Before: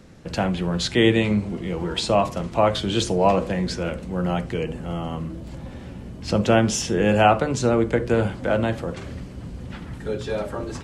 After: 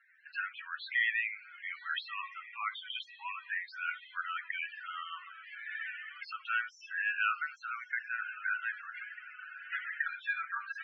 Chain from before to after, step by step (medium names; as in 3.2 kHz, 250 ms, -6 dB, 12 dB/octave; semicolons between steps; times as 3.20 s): recorder AGC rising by 11 dB/s; inverse Chebyshev high-pass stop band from 450 Hz, stop band 60 dB; saturation -13.5 dBFS, distortion -20 dB; echo that smears into a reverb 1097 ms, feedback 59%, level -13 dB; on a send at -19.5 dB: reverberation RT60 1.4 s, pre-delay 7 ms; on the sum: loudest bins only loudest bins 16; low-pass 2 kHz 24 dB/octave; tilt EQ +3.5 dB/octave